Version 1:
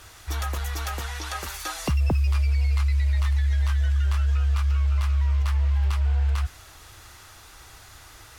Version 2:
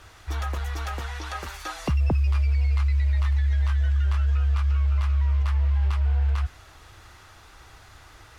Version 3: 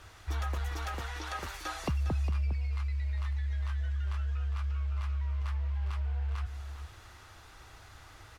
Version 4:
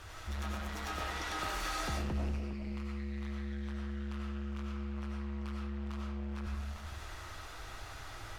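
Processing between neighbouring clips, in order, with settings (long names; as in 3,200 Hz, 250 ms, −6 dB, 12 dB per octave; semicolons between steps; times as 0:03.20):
low-pass filter 2,900 Hz 6 dB per octave
downward compressor, threshold −25 dBFS, peak gain reduction 6 dB; parametric band 93 Hz +2 dB; single-tap delay 406 ms −11 dB; level −4 dB
soft clipping −38.5 dBFS, distortion −9 dB; comb and all-pass reverb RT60 0.7 s, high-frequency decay 0.8×, pre-delay 55 ms, DRR −2 dB; level +2.5 dB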